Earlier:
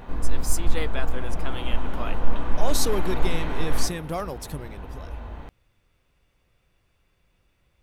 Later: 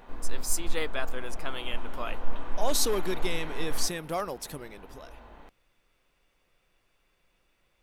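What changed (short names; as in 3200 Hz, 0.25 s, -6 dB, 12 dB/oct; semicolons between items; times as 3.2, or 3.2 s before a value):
background -6.5 dB; master: add bell 82 Hz -14.5 dB 2.1 oct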